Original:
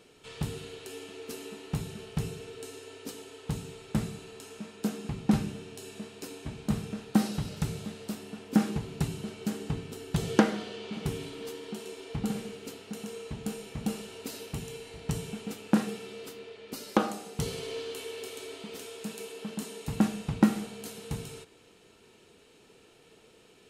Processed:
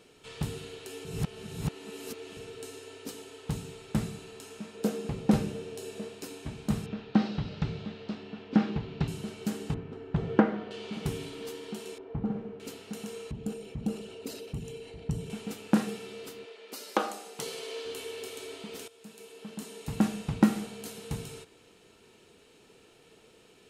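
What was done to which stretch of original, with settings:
1.05–2.37 s: reverse
4.74–6.15 s: peaking EQ 500 Hz +9.5 dB 0.64 oct
6.86–9.08 s: low-pass 4.3 kHz 24 dB/octave
9.74–10.71 s: low-pass 1.7 kHz
11.98–12.60 s: low-pass 1.1 kHz
13.31–15.30 s: resonances exaggerated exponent 1.5
16.45–17.85 s: high-pass 400 Hz
18.88–20.12 s: fade in, from -16 dB

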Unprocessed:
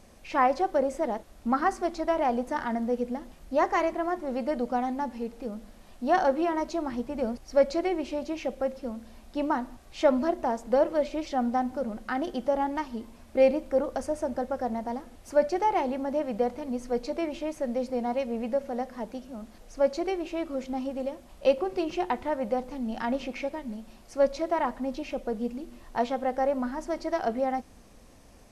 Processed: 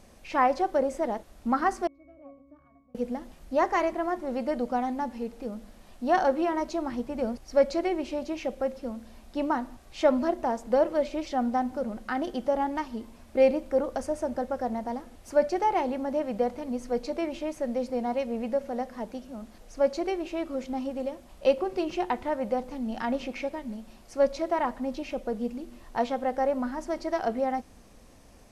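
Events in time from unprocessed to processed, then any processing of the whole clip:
1.87–2.95 s: pitch-class resonator C#, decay 0.59 s

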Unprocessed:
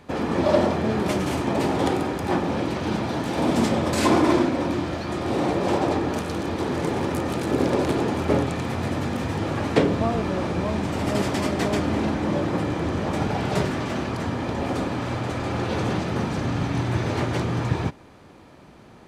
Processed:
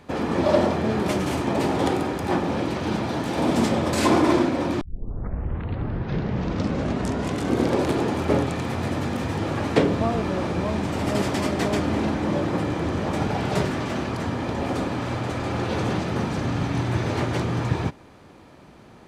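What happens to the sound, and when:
4.81 s: tape start 3.01 s

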